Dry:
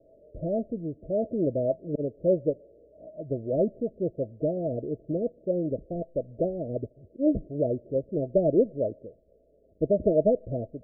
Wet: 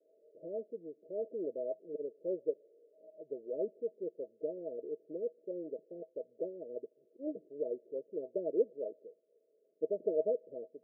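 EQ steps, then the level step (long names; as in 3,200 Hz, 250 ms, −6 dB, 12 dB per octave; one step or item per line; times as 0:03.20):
four-pole ladder high-pass 320 Hz, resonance 55%
Chebyshev low-pass with heavy ripple 660 Hz, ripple 9 dB
−1.0 dB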